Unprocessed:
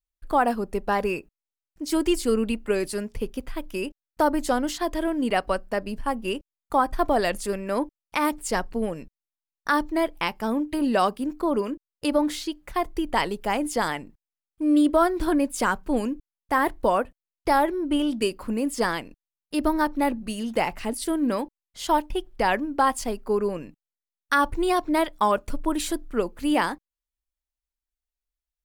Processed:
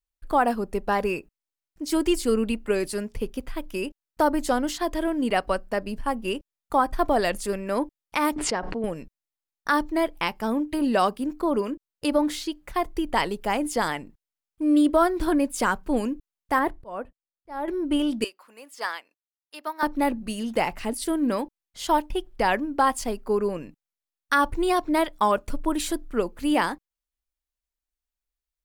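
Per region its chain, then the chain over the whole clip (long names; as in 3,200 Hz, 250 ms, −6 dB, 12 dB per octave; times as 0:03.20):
0:08.36–0:08.84: high-pass filter 260 Hz 6 dB per octave + head-to-tape spacing loss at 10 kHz 25 dB + background raised ahead of every attack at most 31 dB per second
0:16.59–0:17.68: noise gate −45 dBFS, range −8 dB + high-shelf EQ 2,300 Hz −10 dB + volume swells 376 ms
0:18.24–0:19.83: high-pass filter 850 Hz + dynamic equaliser 9,300 Hz, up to −6 dB, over −51 dBFS, Q 1.1 + expander for the loud parts, over −41 dBFS
whole clip: no processing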